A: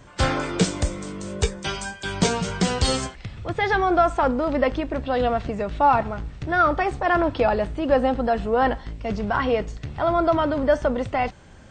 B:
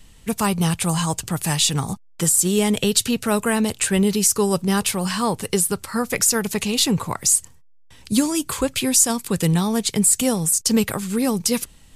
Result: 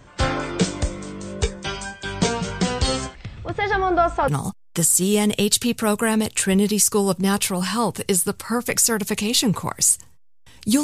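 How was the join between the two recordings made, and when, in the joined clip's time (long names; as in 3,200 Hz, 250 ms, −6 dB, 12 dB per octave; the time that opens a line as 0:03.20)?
A
0:04.28: continue with B from 0:01.72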